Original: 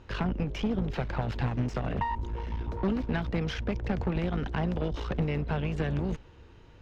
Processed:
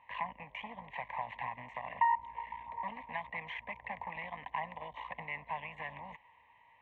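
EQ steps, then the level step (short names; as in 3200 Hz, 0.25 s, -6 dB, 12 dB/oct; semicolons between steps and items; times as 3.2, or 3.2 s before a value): double band-pass 1400 Hz, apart 0.94 oct; fixed phaser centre 1400 Hz, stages 6; +7.5 dB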